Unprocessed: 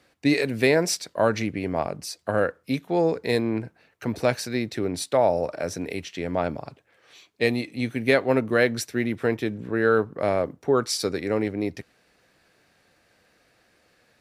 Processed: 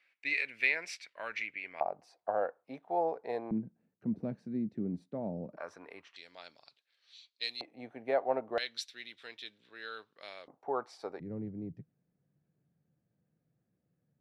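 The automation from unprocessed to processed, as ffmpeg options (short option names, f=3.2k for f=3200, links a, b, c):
-af "asetnsamples=n=441:p=0,asendcmd='1.81 bandpass f 760;3.51 bandpass f 200;5.57 bandpass f 1100;6.16 bandpass f 4100;7.61 bandpass f 740;8.58 bandpass f 3700;10.48 bandpass f 810;11.2 bandpass f 150',bandpass=f=2.3k:t=q:w=4:csg=0"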